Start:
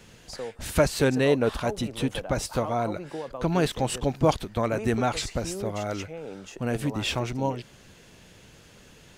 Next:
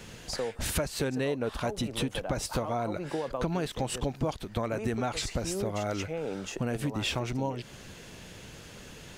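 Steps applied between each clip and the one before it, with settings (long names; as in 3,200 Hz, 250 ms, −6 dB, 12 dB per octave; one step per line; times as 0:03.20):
downward compressor 6 to 1, threshold −33 dBFS, peak gain reduction 17 dB
level +5 dB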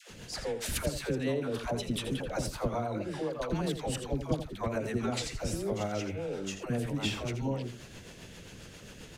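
all-pass dispersion lows, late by 101 ms, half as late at 600 Hz
rotating-speaker cabinet horn 7.5 Hz
single-tap delay 83 ms −10 dB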